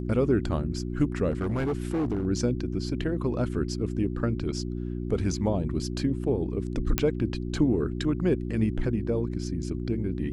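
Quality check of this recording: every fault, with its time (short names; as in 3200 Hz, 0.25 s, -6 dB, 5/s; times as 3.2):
hum 60 Hz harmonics 6 -32 dBFS
1.3–2.25 clipped -23.5 dBFS
6.98 pop -7 dBFS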